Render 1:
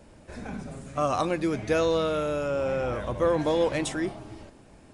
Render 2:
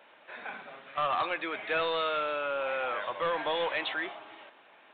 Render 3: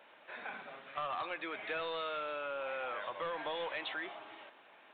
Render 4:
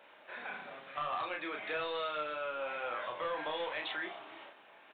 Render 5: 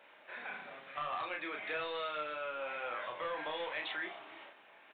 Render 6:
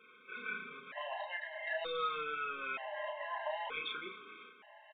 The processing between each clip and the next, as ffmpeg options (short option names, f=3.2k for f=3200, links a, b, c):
-af "highpass=1k,aresample=8000,asoftclip=type=tanh:threshold=-29dB,aresample=44100,volume=6dB"
-af "acompressor=threshold=-36dB:ratio=2.5,volume=-2.5dB"
-filter_complex "[0:a]asplit=2[a][b];[b]adelay=33,volume=-4dB[c];[a][c]amix=inputs=2:normalize=0"
-af "equalizer=f=2.1k:t=o:w=0.75:g=3.5,volume=-2.5dB"
-af "aecho=1:1:4.7:0.69,aresample=8000,aresample=44100,afftfilt=real='re*gt(sin(2*PI*0.54*pts/sr)*(1-2*mod(floor(b*sr/1024/530),2)),0)':imag='im*gt(sin(2*PI*0.54*pts/sr)*(1-2*mod(floor(b*sr/1024/530),2)),0)':win_size=1024:overlap=0.75,volume=2dB"